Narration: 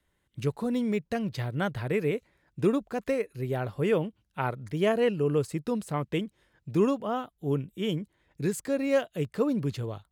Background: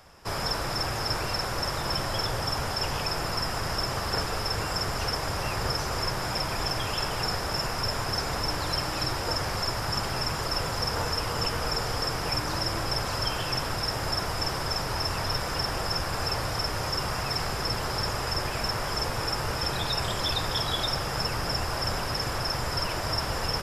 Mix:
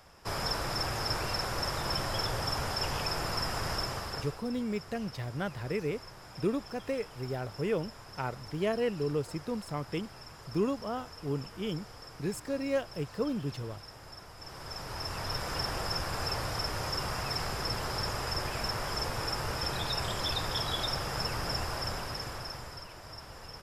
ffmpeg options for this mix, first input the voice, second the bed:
ffmpeg -i stem1.wav -i stem2.wav -filter_complex "[0:a]adelay=3800,volume=-5.5dB[link_01];[1:a]volume=11.5dB,afade=type=out:start_time=3.72:duration=0.69:silence=0.158489,afade=type=in:start_time=14.38:duration=1.19:silence=0.177828,afade=type=out:start_time=21.59:duration=1.27:silence=0.223872[link_02];[link_01][link_02]amix=inputs=2:normalize=0" out.wav

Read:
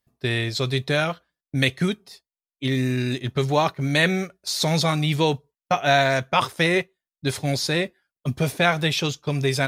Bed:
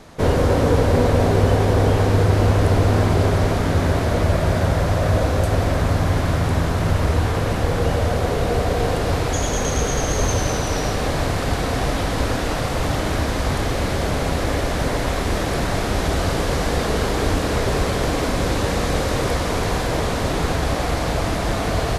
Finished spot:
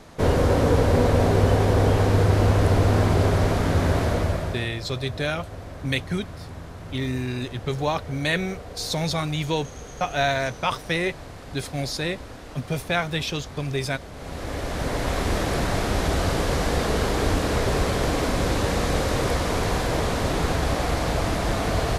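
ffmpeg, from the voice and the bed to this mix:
ffmpeg -i stem1.wav -i stem2.wav -filter_complex "[0:a]adelay=4300,volume=-4.5dB[link_01];[1:a]volume=13.5dB,afade=type=out:start_time=4.04:duration=0.65:silence=0.158489,afade=type=in:start_time=14.13:duration=1.09:silence=0.158489[link_02];[link_01][link_02]amix=inputs=2:normalize=0" out.wav

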